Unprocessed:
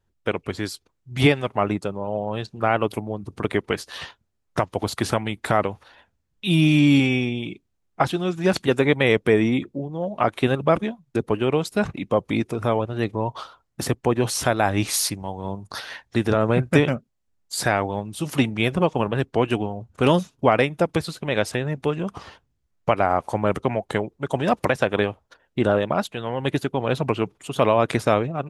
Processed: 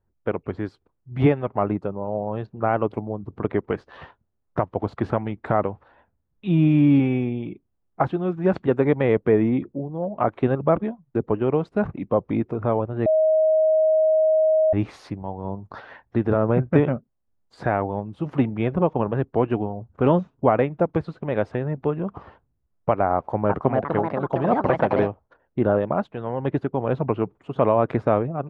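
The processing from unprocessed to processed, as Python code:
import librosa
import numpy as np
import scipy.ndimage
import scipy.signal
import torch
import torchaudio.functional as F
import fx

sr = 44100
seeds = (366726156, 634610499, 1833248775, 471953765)

y = fx.echo_pitch(x, sr, ms=354, semitones=4, count=2, db_per_echo=-3.0, at=(23.14, 25.09))
y = fx.edit(y, sr, fx.bleep(start_s=13.06, length_s=1.67, hz=630.0, db=-14.5), tone=tone)
y = scipy.signal.sosfilt(scipy.signal.butter(2, 1200.0, 'lowpass', fs=sr, output='sos'), y)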